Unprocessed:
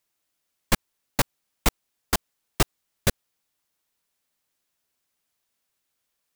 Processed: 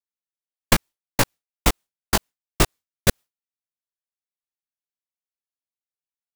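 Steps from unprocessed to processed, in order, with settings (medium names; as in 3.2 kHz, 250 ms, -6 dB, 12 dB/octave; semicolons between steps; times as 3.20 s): expander -32 dBFS; 0.73–3.09 s: chorus 2.2 Hz, delay 17.5 ms, depth 6.3 ms; trim +7 dB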